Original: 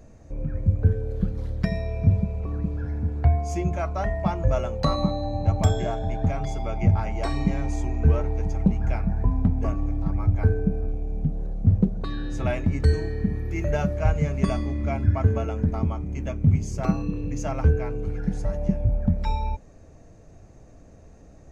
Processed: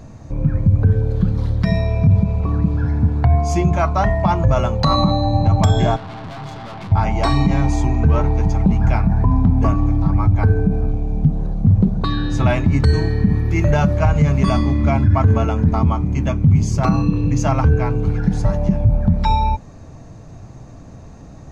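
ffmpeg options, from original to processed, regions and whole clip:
ffmpeg -i in.wav -filter_complex "[0:a]asettb=1/sr,asplit=3[link_01][link_02][link_03];[link_01]atrim=end=5.964[link_04];[link_02]atrim=start=5.96:end=6.92,asetpts=PTS-STARTPTS,afade=type=in:duration=0.004:curve=qsin,afade=type=out:start_time=0.956:duration=0.004:curve=qsin,highpass=120,lowpass=4900,aeval=exprs='(tanh(126*val(0)+0.7)-tanh(0.7))/126':channel_layout=same[link_05];[link_03]atrim=start=6.916[link_06];[link_04][link_05]acrossfade=duration=0.004:curve1=hsin:curve2=qsin[link_07];[link_07][link_06]acrossfade=duration=0.004:curve1=qsin:curve2=hsin,equalizer=frequency=125:width_type=o:width=1:gain=9,equalizer=frequency=250:width_type=o:width=1:gain=4,equalizer=frequency=500:width_type=o:width=1:gain=-3,equalizer=frequency=1000:width_type=o:width=1:gain=9,equalizer=frequency=4000:width_type=o:width=1:gain=7,alimiter=level_in=11dB:limit=-1dB:release=50:level=0:latency=1,volume=-4.5dB" out.wav

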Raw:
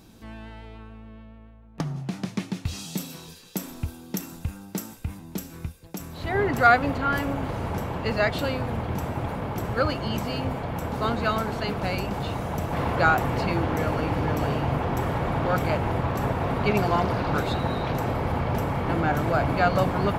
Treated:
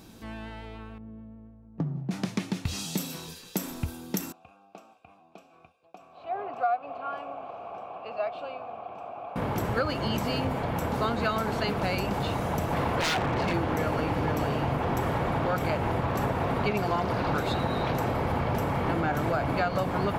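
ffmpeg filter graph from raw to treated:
ffmpeg -i in.wav -filter_complex "[0:a]asettb=1/sr,asplit=3[link_01][link_02][link_03];[link_01]atrim=end=0.984[link_04];[link_02]atrim=start=0.98:end=2.11,asetpts=PTS-STARTPTS,afade=type=in:duration=0.004:curve=qsin,afade=type=out:start_time=1.126:duration=0.004:curve=qsin,bandpass=frequency=170:width_type=q:width=0.64,asplit=2[link_05][link_06];[link_06]adelay=18,volume=-12.5dB[link_07];[link_05][link_07]amix=inputs=2:normalize=0,atrim=end_sample=49833[link_08];[link_03]atrim=start=2.106[link_09];[link_04][link_08]acrossfade=duration=0.004:curve1=hsin:curve2=qsin[link_10];[link_10][link_09]acrossfade=duration=0.004:curve1=qsin:curve2=hsin,asettb=1/sr,asplit=3[link_11][link_12][link_13];[link_11]atrim=end=4.324[link_14];[link_12]atrim=start=4.32:end=9.36,asetpts=PTS-STARTPTS,afade=type=in:duration=0.004:curve=qsin,afade=type=out:start_time=5.036:duration=0.004:curve=qsin,asplit=3[link_15][link_16][link_17];[link_15]bandpass=frequency=730:width_type=q:width=8,volume=0dB[link_18];[link_16]bandpass=frequency=1090:width_type=q:width=8,volume=-6dB[link_19];[link_17]bandpass=frequency=2440:width_type=q:width=8,volume=-9dB[link_20];[link_18][link_19][link_20]amix=inputs=3:normalize=0,highshelf=frequency=12000:gain=-9[link_21];[link_13]atrim=start=9.356[link_22];[link_14][link_21]acrossfade=duration=0.004:curve1=hsin:curve2=qsin[link_23];[link_23][link_22]acrossfade=duration=0.004:curve1=qsin:curve2=hsin,asettb=1/sr,asplit=3[link_24][link_25][link_26];[link_24]atrim=end=13.004[link_27];[link_25]atrim=start=13:end=13.54,asetpts=PTS-STARTPTS,afade=type=in:duration=0.004:curve=qsin,afade=type=out:start_time=0.536:duration=0.004:curve=qsin,lowpass=3700,aeval=exprs='0.0891*(abs(mod(val(0)/0.0891+3,4)-2)-1)':channel_layout=same[link_28];[link_26]atrim=start=13.536[link_29];[link_27][link_28]acrossfade=duration=0.004:curve1=hsin:curve2=qsin[link_30];[link_30][link_29]acrossfade=duration=0.004:curve1=qsin:curve2=hsin,lowshelf=frequency=110:gain=-5,acompressor=threshold=-26dB:ratio=6,volume=2.5dB" out.wav

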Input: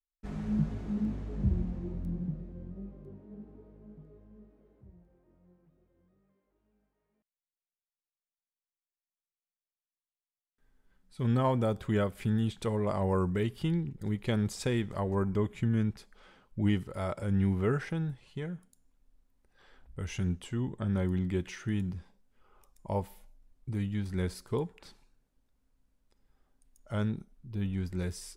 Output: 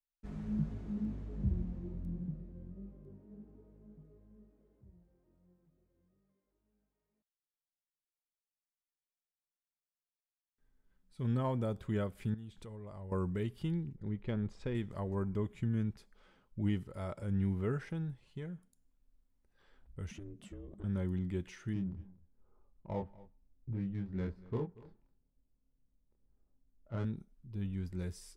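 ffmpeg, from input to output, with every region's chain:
ffmpeg -i in.wav -filter_complex "[0:a]asettb=1/sr,asplit=3[link_01][link_02][link_03];[link_01]atrim=end=12.344[link_04];[link_02]atrim=start=12.34:end=13.12,asetpts=PTS-STARTPTS,afade=type=in:duration=0.004:curve=qsin,afade=type=out:start_time=0.776:duration=0.004:curve=qsin,asubboost=boost=8.5:cutoff=110,acompressor=threshold=-44dB:ratio=2.5:attack=3.2:release=140:knee=1:detection=peak[link_05];[link_03]atrim=start=13.116[link_06];[link_04][link_05]acrossfade=duration=0.004:curve1=hsin:curve2=qsin[link_07];[link_07][link_06]acrossfade=duration=0.004:curve1=qsin:curve2=hsin,asettb=1/sr,asplit=3[link_08][link_09][link_10];[link_08]atrim=end=13.964[link_11];[link_09]atrim=start=13.96:end=14.75,asetpts=PTS-STARTPTS,afade=type=in:duration=0.004:curve=qsin,afade=type=out:start_time=0.786:duration=0.004:curve=qsin,asubboost=boost=10.5:cutoff=53,adynamicsmooth=sensitivity=1:basefreq=3000[link_12];[link_10]atrim=start=14.746[link_13];[link_11][link_12]acrossfade=duration=0.004:curve1=hsin:curve2=qsin[link_14];[link_14][link_13]acrossfade=duration=0.004:curve1=qsin:curve2=hsin,asettb=1/sr,asplit=3[link_15][link_16][link_17];[link_15]atrim=end=20.114[link_18];[link_16]atrim=start=20.11:end=20.84,asetpts=PTS-STARTPTS,afade=type=in:duration=0.004:curve=qsin,afade=type=out:start_time=0.726:duration=0.004:curve=qsin,lowshelf=frequency=110:gain=10,aeval=exprs='val(0)*sin(2*PI*200*n/s)':channel_layout=same,acompressor=threshold=-38dB:ratio=6:attack=3.2:release=140:knee=1:detection=peak[link_19];[link_17]atrim=start=20.836[link_20];[link_18][link_19]acrossfade=duration=0.004:curve1=hsin:curve2=qsin[link_21];[link_21][link_20]acrossfade=duration=0.004:curve1=qsin:curve2=hsin,asettb=1/sr,asplit=3[link_22][link_23][link_24];[link_22]atrim=end=21.734[link_25];[link_23]atrim=start=21.73:end=27.05,asetpts=PTS-STARTPTS,afade=type=in:duration=0.004:curve=qsin,afade=type=out:start_time=5.316:duration=0.004:curve=qsin,adynamicsmooth=sensitivity=5.5:basefreq=880,asplit=2[link_26][link_27];[link_27]adelay=26,volume=-3.5dB[link_28];[link_26][link_28]amix=inputs=2:normalize=0,atrim=end_sample=234612,aecho=1:1:236:0.0944,atrim=end_sample=234612[link_29];[link_24]atrim=start=27.046[link_30];[link_25][link_29]acrossfade=duration=0.004:curve1=hsin:curve2=qsin[link_31];[link_31][link_30]acrossfade=duration=0.004:curve1=qsin:curve2=hsin,lowshelf=frequency=390:gain=4.5,bandreject=frequency=760:width=22,volume=-9dB" out.wav

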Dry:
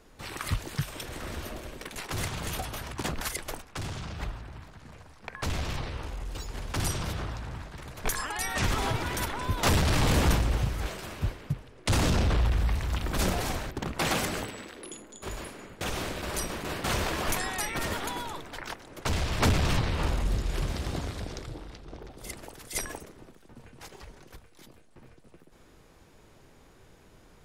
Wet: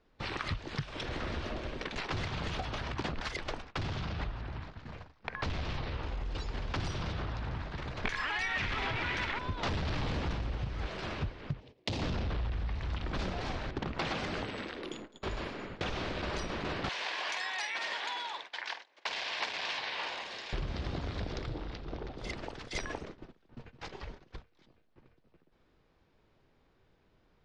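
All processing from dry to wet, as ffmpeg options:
ffmpeg -i in.wav -filter_complex "[0:a]asettb=1/sr,asplit=3[link_01][link_02][link_03];[link_01]atrim=end=8.054[link_04];[link_02]atrim=start=8.05:end=9.39,asetpts=PTS-STARTPTS,afade=type=in:duration=0.004:curve=qsin,afade=type=out:start_time=1.336:duration=0.004:curve=qsin,aeval=exprs='val(0)+0.5*0.0282*sgn(val(0))':channel_layout=same,equalizer=frequency=2200:width=1.1:gain=10.5[link_05];[link_03]atrim=start=9.386[link_06];[link_04][link_05]acrossfade=duration=0.004:curve1=hsin:curve2=qsin[link_07];[link_07][link_06]acrossfade=duration=0.004:curve1=qsin:curve2=hsin,asettb=1/sr,asplit=3[link_08][link_09][link_10];[link_08]atrim=end=11.604[link_11];[link_09]atrim=start=11.6:end=12.02,asetpts=PTS-STARTPTS,afade=type=in:duration=0.004:curve=qsin,afade=type=out:start_time=0.416:duration=0.004:curve=qsin,highpass=frequency=170:poles=1,equalizer=frequency=1400:width_type=o:width=0.9:gain=-14.5[link_12];[link_10]atrim=start=12.016[link_13];[link_11][link_12]acrossfade=duration=0.004:curve1=hsin:curve2=qsin[link_14];[link_14][link_13]acrossfade=duration=0.004:curve1=qsin:curve2=hsin,asettb=1/sr,asplit=3[link_15][link_16][link_17];[link_15]atrim=end=16.894[link_18];[link_16]atrim=start=16.89:end=20.53,asetpts=PTS-STARTPTS,afade=type=in:duration=0.004:curve=qsin,afade=type=out:start_time=3.636:duration=0.004:curve=qsin,highpass=1000,equalizer=frequency=1300:width_type=o:width=0.24:gain=-11,asplit=2[link_19][link_20];[link_20]adelay=48,volume=-10.5dB[link_21];[link_19][link_21]amix=inputs=2:normalize=0,atrim=end_sample=160524[link_22];[link_17]atrim=start=20.526[link_23];[link_18][link_22]acrossfade=duration=0.004:curve1=hsin:curve2=qsin[link_24];[link_24][link_23]acrossfade=duration=0.004:curve1=qsin:curve2=hsin,lowpass=frequency=4800:width=0.5412,lowpass=frequency=4800:width=1.3066,agate=range=-16dB:threshold=-48dB:ratio=16:detection=peak,acompressor=threshold=-36dB:ratio=6,volume=3.5dB" out.wav

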